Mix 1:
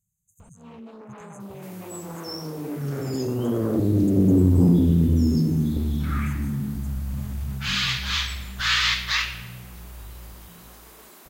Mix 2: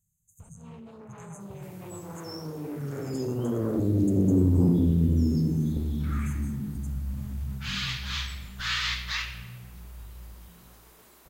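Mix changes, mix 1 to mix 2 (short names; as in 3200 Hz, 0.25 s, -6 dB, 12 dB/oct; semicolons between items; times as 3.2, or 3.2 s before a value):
first sound -5.0 dB; second sound -8.5 dB; reverb: on, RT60 1.2 s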